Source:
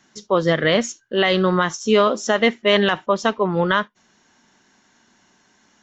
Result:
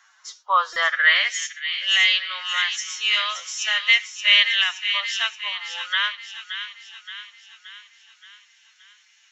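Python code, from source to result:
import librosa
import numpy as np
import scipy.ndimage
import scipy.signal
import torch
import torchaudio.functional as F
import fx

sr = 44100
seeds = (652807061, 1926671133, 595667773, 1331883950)

p1 = scipy.signal.sosfilt(scipy.signal.cheby2(4, 60, 170.0, 'highpass', fs=sr, output='sos'), x)
p2 = fx.stretch_vocoder(p1, sr, factor=1.6)
p3 = p2 + fx.echo_wet_highpass(p2, sr, ms=574, feedback_pct=53, hz=1500.0, wet_db=-8, dry=0)
p4 = fx.filter_sweep_highpass(p3, sr, from_hz=1200.0, to_hz=2400.0, start_s=0.79, end_s=1.4, q=2.4)
y = fx.buffer_glitch(p4, sr, at_s=(0.73,), block=128, repeats=10)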